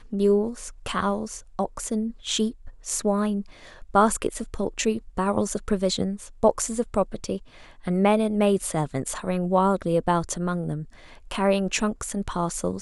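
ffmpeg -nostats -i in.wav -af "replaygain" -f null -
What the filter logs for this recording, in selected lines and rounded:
track_gain = +4.9 dB
track_peak = 0.339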